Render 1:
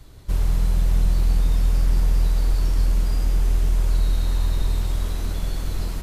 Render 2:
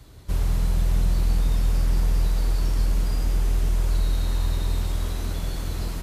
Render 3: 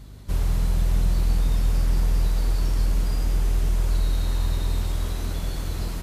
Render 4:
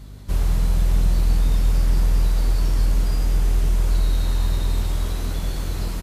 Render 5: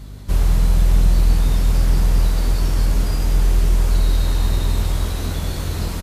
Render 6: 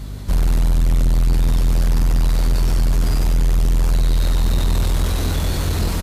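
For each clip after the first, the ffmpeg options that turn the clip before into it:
-af "highpass=40"
-af "aeval=exprs='val(0)+0.00708*(sin(2*PI*50*n/s)+sin(2*PI*2*50*n/s)/2+sin(2*PI*3*50*n/s)/3+sin(2*PI*4*50*n/s)/4+sin(2*PI*5*50*n/s)/5)':c=same"
-filter_complex "[0:a]asplit=2[a][b];[b]adelay=20,volume=-11.5dB[c];[a][c]amix=inputs=2:normalize=0,volume=2dB"
-af "aecho=1:1:1024:0.316,volume=4dB"
-af "asoftclip=type=tanh:threshold=-17.5dB,volume=5.5dB"

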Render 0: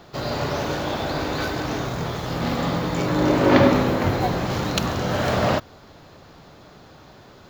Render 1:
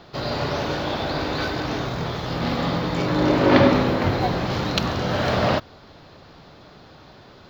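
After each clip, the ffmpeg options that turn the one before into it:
-af "highshelf=f=6.2k:t=q:w=1.5:g=-9"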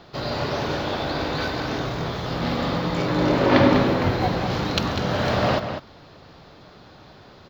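-filter_complex "[0:a]asplit=2[a][b];[b]adelay=198.3,volume=-8dB,highshelf=f=4k:g=-4.46[c];[a][c]amix=inputs=2:normalize=0,volume=-1dB"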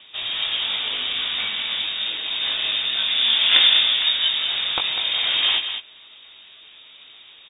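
-filter_complex "[0:a]asplit=2[a][b];[b]adelay=19,volume=-6dB[c];[a][c]amix=inputs=2:normalize=0,lowpass=f=3.2k:t=q:w=0.5098,lowpass=f=3.2k:t=q:w=0.6013,lowpass=f=3.2k:t=q:w=0.9,lowpass=f=3.2k:t=q:w=2.563,afreqshift=-3800"

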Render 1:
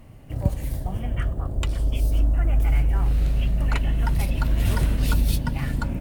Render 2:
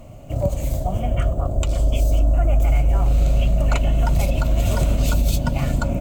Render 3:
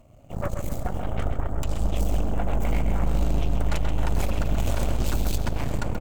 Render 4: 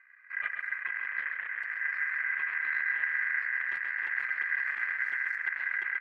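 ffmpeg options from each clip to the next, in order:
-af "superequalizer=8b=2.82:11b=0.398:15b=2.24:16b=0.631,alimiter=limit=-14.5dB:level=0:latency=1:release=85,volume=5dB"
-filter_complex "[0:a]aeval=exprs='0.355*(cos(1*acos(clip(val(0)/0.355,-1,1)))-cos(1*PI/2))+0.0501*(cos(3*acos(clip(val(0)/0.355,-1,1)))-cos(3*PI/2))+0.0891*(cos(6*acos(clip(val(0)/0.355,-1,1)))-cos(6*PI/2))':c=same,asplit=2[a][b];[b]adelay=132,lowpass=f=5k:p=1,volume=-7dB,asplit=2[c][d];[d]adelay=132,lowpass=f=5k:p=1,volume=0.48,asplit=2[e][f];[f]adelay=132,lowpass=f=5k:p=1,volume=0.48,asplit=2[g][h];[h]adelay=132,lowpass=f=5k:p=1,volume=0.48,asplit=2[i][j];[j]adelay=132,lowpass=f=5k:p=1,volume=0.48,asplit=2[k][l];[l]adelay=132,lowpass=f=5k:p=1,volume=0.48[m];[a][c][e][g][i][k][m]amix=inputs=7:normalize=0,volume=-8.5dB"
-af "bandpass=f=210:t=q:w=2.4:csg=0,aeval=exprs='val(0)*sin(2*PI*1800*n/s)':c=same,volume=7dB"

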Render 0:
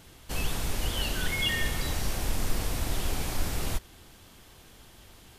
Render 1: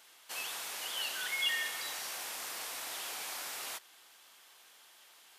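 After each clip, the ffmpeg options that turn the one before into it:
-af "highpass=880,volume=-3dB"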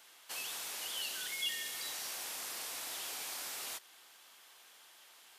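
-filter_complex "[0:a]acrossover=split=450|3000[a][b][c];[b]acompressor=threshold=-48dB:ratio=6[d];[a][d][c]amix=inputs=3:normalize=0"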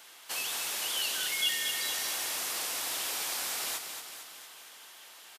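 -af "aecho=1:1:227|454|681|908|1135|1362|1589:0.422|0.245|0.142|0.0823|0.0477|0.0277|0.0161,volume=7dB"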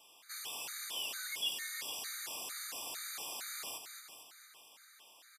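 -af "afftfilt=real='re*gt(sin(2*PI*2.2*pts/sr)*(1-2*mod(floor(b*sr/1024/1200),2)),0)':imag='im*gt(sin(2*PI*2.2*pts/sr)*(1-2*mod(floor(b*sr/1024/1200),2)),0)':win_size=1024:overlap=0.75,volume=-6dB"

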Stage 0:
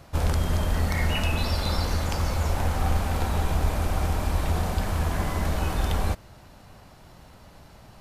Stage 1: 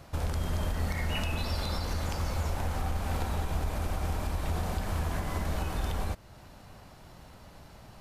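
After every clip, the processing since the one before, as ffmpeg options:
-af "alimiter=limit=-20dB:level=0:latency=1:release=300,volume=-1.5dB"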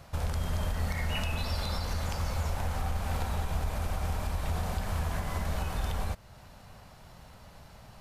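-af "equalizer=f=320:t=o:w=0.64:g=-7.5"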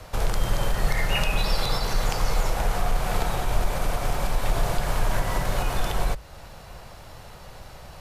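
-af "afreqshift=-52,volume=9dB"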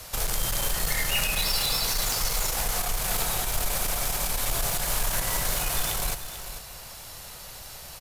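-af "crystalizer=i=6.5:c=0,aeval=exprs='(tanh(6.31*val(0)+0.3)-tanh(0.3))/6.31':c=same,aecho=1:1:443:0.282,volume=-4.5dB"

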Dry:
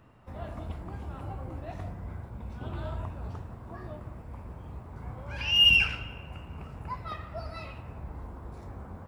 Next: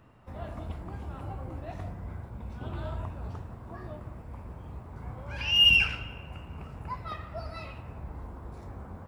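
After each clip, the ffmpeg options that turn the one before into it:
-af anull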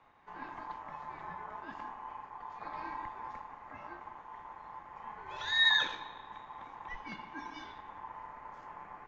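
-af "aeval=exprs='val(0)*sin(2*PI*990*n/s)':c=same,afreqshift=-36,aresample=16000,aresample=44100,volume=-3.5dB"

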